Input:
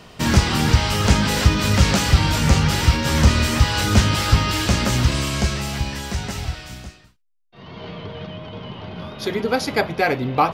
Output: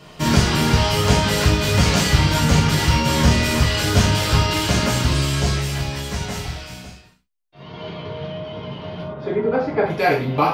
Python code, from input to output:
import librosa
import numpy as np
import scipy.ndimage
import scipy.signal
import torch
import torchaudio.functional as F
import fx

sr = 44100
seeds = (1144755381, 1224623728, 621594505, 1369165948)

y = fx.lowpass(x, sr, hz=1400.0, slope=12, at=(9.02, 9.86))
y = fx.rev_gated(y, sr, seeds[0], gate_ms=140, shape='falling', drr_db=-4.5)
y = y * 10.0 ** (-4.5 / 20.0)